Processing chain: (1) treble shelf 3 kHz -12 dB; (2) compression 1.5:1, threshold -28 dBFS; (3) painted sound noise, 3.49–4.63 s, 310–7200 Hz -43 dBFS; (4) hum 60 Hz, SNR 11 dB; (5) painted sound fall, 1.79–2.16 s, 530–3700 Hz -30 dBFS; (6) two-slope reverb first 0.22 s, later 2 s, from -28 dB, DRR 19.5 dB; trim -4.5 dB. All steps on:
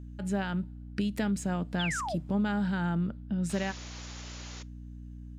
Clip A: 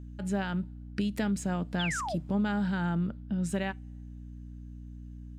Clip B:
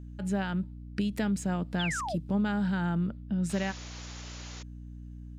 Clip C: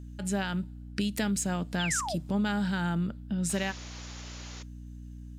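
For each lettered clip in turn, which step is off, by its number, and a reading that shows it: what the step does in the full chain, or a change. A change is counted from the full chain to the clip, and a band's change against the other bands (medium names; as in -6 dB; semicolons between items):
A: 3, momentary loudness spread change +2 LU; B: 6, loudness change +1.0 LU; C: 1, 8 kHz band +8.0 dB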